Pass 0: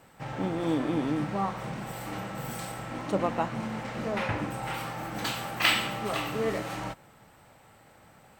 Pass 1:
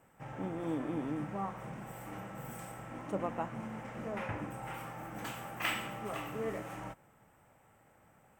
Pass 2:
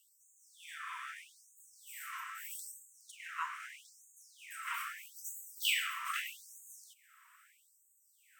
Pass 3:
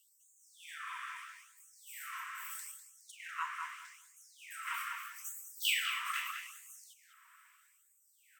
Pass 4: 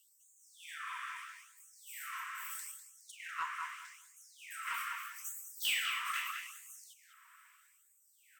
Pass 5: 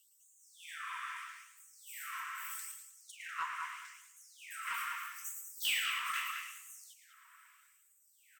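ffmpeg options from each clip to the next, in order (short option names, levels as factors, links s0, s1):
-af "equalizer=f=4200:w=2:g=-14.5,volume=0.398"
-af "afftfilt=real='re*gte(b*sr/1024,940*pow(6400/940,0.5+0.5*sin(2*PI*0.79*pts/sr)))':imag='im*gte(b*sr/1024,940*pow(6400/940,0.5+0.5*sin(2*PI*0.79*pts/sr)))':win_size=1024:overlap=0.75,volume=2.51"
-filter_complex "[0:a]asplit=2[s0][s1];[s1]adelay=199,lowpass=f=2700:p=1,volume=0.631,asplit=2[s2][s3];[s3]adelay=199,lowpass=f=2700:p=1,volume=0.18,asplit=2[s4][s5];[s5]adelay=199,lowpass=f=2700:p=1,volume=0.18[s6];[s0][s2][s4][s6]amix=inputs=4:normalize=0"
-af "asoftclip=type=tanh:threshold=0.0422,volume=1.12"
-af "aecho=1:1:112:0.299"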